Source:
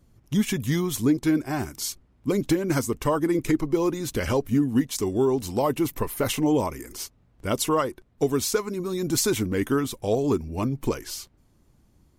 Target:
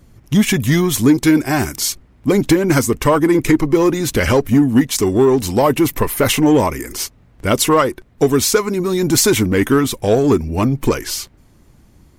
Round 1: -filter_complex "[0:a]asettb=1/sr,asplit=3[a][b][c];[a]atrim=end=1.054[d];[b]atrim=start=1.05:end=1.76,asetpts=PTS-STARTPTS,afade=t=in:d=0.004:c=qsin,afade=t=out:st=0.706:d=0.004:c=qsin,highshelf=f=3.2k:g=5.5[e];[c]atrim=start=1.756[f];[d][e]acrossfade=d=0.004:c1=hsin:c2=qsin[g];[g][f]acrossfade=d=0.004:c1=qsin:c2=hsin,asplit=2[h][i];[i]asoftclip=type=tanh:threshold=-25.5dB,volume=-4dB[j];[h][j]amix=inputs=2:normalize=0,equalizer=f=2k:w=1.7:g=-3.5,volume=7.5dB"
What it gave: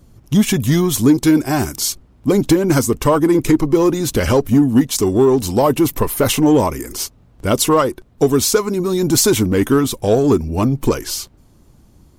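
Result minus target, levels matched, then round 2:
2000 Hz band -4.5 dB
-filter_complex "[0:a]asettb=1/sr,asplit=3[a][b][c];[a]atrim=end=1.054[d];[b]atrim=start=1.05:end=1.76,asetpts=PTS-STARTPTS,afade=t=in:d=0.004:c=qsin,afade=t=out:st=0.706:d=0.004:c=qsin,highshelf=f=3.2k:g=5.5[e];[c]atrim=start=1.756[f];[d][e]acrossfade=d=0.004:c1=hsin:c2=qsin[g];[g][f]acrossfade=d=0.004:c1=qsin:c2=hsin,asplit=2[h][i];[i]asoftclip=type=tanh:threshold=-25.5dB,volume=-4dB[j];[h][j]amix=inputs=2:normalize=0,equalizer=f=2k:w=1.7:g=3.5,volume=7.5dB"

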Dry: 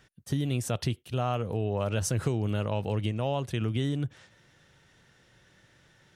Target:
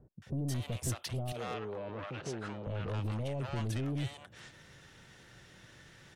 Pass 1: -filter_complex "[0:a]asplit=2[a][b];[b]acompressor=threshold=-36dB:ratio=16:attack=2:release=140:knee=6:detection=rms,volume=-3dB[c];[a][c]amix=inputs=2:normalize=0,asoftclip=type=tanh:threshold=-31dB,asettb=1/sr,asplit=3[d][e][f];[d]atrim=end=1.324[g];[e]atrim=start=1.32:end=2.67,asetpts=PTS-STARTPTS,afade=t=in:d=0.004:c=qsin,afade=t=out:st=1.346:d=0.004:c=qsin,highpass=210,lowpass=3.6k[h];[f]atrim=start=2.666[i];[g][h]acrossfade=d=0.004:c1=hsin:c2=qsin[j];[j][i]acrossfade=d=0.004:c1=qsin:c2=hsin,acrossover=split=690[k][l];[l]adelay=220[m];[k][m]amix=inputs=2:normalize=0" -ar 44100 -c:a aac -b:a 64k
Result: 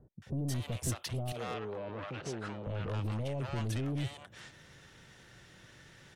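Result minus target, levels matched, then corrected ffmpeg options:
compressor: peak gain reduction -9 dB
-filter_complex "[0:a]asplit=2[a][b];[b]acompressor=threshold=-45.5dB:ratio=16:attack=2:release=140:knee=6:detection=rms,volume=-3dB[c];[a][c]amix=inputs=2:normalize=0,asoftclip=type=tanh:threshold=-31dB,asettb=1/sr,asplit=3[d][e][f];[d]atrim=end=1.324[g];[e]atrim=start=1.32:end=2.67,asetpts=PTS-STARTPTS,afade=t=in:d=0.004:c=qsin,afade=t=out:st=1.346:d=0.004:c=qsin,highpass=210,lowpass=3.6k[h];[f]atrim=start=2.666[i];[g][h]acrossfade=d=0.004:c1=hsin:c2=qsin[j];[j][i]acrossfade=d=0.004:c1=qsin:c2=hsin,acrossover=split=690[k][l];[l]adelay=220[m];[k][m]amix=inputs=2:normalize=0" -ar 44100 -c:a aac -b:a 64k

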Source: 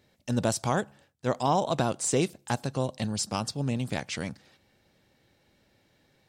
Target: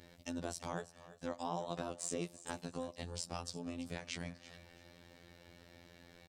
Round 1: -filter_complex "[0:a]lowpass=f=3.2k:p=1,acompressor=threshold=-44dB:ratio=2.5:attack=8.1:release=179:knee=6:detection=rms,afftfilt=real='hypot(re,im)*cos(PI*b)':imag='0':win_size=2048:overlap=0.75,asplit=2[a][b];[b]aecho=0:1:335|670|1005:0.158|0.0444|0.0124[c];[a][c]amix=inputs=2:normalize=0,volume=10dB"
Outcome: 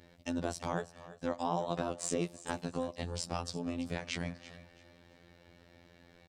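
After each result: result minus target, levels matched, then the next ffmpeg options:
compressor: peak gain reduction -6.5 dB; 8000 Hz band -3.0 dB
-filter_complex "[0:a]lowpass=f=3.2k:p=1,acompressor=threshold=-54.5dB:ratio=2.5:attack=8.1:release=179:knee=6:detection=rms,afftfilt=real='hypot(re,im)*cos(PI*b)':imag='0':win_size=2048:overlap=0.75,asplit=2[a][b];[b]aecho=0:1:335|670|1005:0.158|0.0444|0.0124[c];[a][c]amix=inputs=2:normalize=0,volume=10dB"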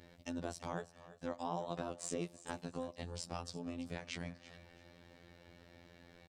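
8000 Hz band -3.0 dB
-filter_complex "[0:a]lowpass=f=9.5k:p=1,acompressor=threshold=-54.5dB:ratio=2.5:attack=8.1:release=179:knee=6:detection=rms,afftfilt=real='hypot(re,im)*cos(PI*b)':imag='0':win_size=2048:overlap=0.75,asplit=2[a][b];[b]aecho=0:1:335|670|1005:0.158|0.0444|0.0124[c];[a][c]amix=inputs=2:normalize=0,volume=10dB"

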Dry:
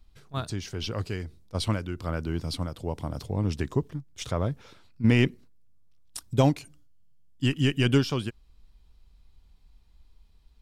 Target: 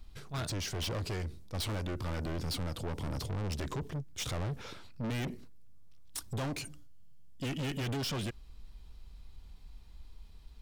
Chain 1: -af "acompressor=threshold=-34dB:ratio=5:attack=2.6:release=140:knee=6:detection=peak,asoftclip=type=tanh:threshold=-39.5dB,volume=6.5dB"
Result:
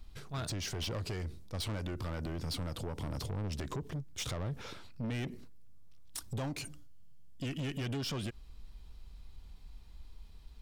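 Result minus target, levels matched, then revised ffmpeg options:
compressor: peak gain reduction +9 dB
-af "acompressor=threshold=-23dB:ratio=5:attack=2.6:release=140:knee=6:detection=peak,asoftclip=type=tanh:threshold=-39.5dB,volume=6.5dB"

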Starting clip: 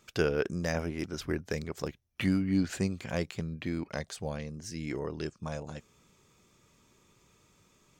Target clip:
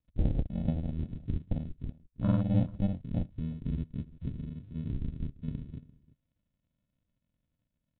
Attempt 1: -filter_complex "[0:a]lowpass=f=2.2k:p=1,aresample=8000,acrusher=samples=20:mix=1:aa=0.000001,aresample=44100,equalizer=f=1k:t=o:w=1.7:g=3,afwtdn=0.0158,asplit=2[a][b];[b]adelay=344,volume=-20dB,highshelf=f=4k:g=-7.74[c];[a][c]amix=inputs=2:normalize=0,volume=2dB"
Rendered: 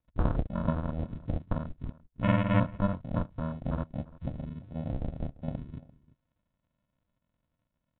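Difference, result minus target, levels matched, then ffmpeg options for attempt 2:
1000 Hz band +12.0 dB
-filter_complex "[0:a]lowpass=f=2.2k:p=1,aresample=8000,acrusher=samples=20:mix=1:aa=0.000001,aresample=44100,equalizer=f=1k:t=o:w=1.7:g=-8.5,afwtdn=0.0158,asplit=2[a][b];[b]adelay=344,volume=-20dB,highshelf=f=4k:g=-7.74[c];[a][c]amix=inputs=2:normalize=0,volume=2dB"

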